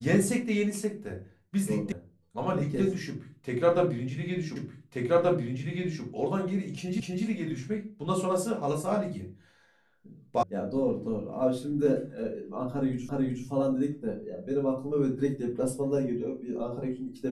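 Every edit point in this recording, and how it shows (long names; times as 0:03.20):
0:01.92: cut off before it has died away
0:04.56: the same again, the last 1.48 s
0:07.00: the same again, the last 0.25 s
0:10.43: cut off before it has died away
0:13.09: the same again, the last 0.37 s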